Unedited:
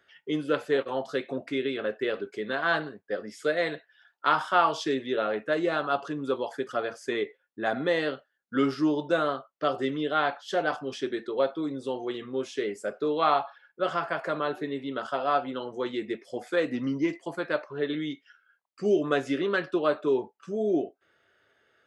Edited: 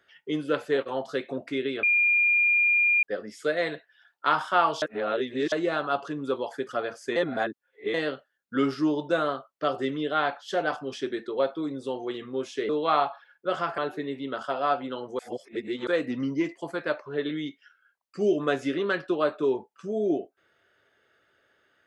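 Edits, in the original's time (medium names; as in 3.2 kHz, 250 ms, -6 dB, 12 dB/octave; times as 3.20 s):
1.83–3.03 s: bleep 2.41 kHz -18.5 dBFS
4.82–5.52 s: reverse
7.16–7.94 s: reverse
12.69–13.03 s: delete
14.12–14.42 s: delete
15.83–16.51 s: reverse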